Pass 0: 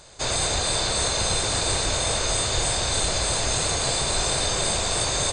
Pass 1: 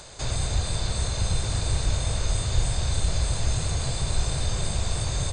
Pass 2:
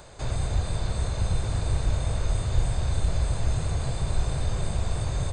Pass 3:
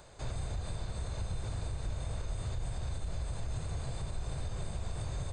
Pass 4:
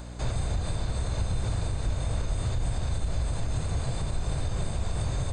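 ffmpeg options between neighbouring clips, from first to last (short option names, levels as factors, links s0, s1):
-filter_complex "[0:a]acrossover=split=160[s0][s1];[s1]acompressor=threshold=0.00251:ratio=2[s2];[s0][s2]amix=inputs=2:normalize=0,volume=2.11"
-af "equalizer=f=5700:w=0.51:g=-10.5"
-af "alimiter=limit=0.0944:level=0:latency=1:release=98,volume=0.422"
-af "aeval=exprs='val(0)+0.00447*(sin(2*PI*60*n/s)+sin(2*PI*2*60*n/s)/2+sin(2*PI*3*60*n/s)/3+sin(2*PI*4*60*n/s)/4+sin(2*PI*5*60*n/s)/5)':c=same,volume=2.51"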